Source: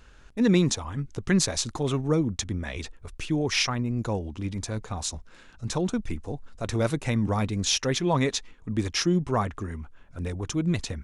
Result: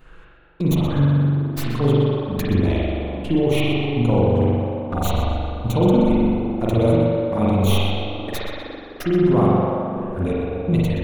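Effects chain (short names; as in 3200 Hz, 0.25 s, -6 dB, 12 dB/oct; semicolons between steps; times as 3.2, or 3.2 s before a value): tracing distortion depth 0.11 ms; bell 5800 Hz -14 dB 1.1 oct; notches 50/100 Hz; in parallel at -1 dB: limiter -19 dBFS, peak gain reduction 8 dB; on the sum: vocal rider within 4 dB 0.5 s; step gate "xx...xxxx....x" 125 bpm -60 dB; envelope flanger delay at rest 8.4 ms, full sweep at -22 dBFS; tape echo 0.127 s, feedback 85%, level -4 dB, low-pass 2200 Hz; spring tank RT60 1.7 s, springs 42 ms, chirp 20 ms, DRR -5.5 dB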